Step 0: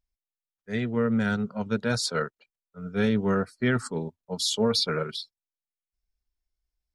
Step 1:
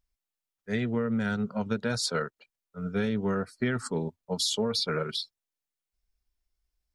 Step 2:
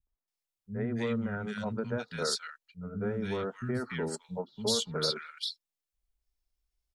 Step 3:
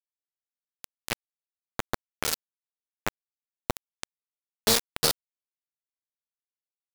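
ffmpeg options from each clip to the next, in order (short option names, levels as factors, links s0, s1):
-af "acompressor=threshold=0.0398:ratio=6,volume=1.41"
-filter_complex "[0:a]acrossover=split=210|1600[s0][s1][s2];[s1]adelay=70[s3];[s2]adelay=280[s4];[s0][s3][s4]amix=inputs=3:normalize=0,volume=0.794"
-af "acrusher=bits=3:mix=0:aa=0.000001,volume=2"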